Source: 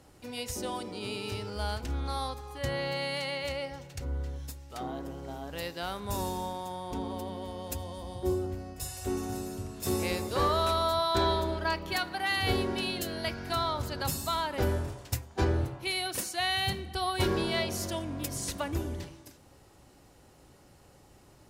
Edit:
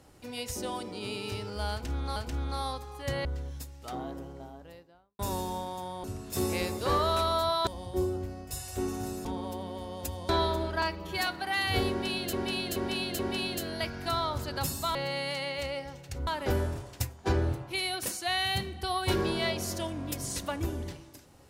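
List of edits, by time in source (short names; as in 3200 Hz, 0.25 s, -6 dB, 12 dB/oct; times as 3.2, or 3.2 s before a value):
1.72–2.16 loop, 2 plays
2.81–4.13 move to 14.39
4.75–6.07 studio fade out
6.92–7.96 swap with 9.54–11.17
11.7–12 stretch 1.5×
12.63–13.06 loop, 4 plays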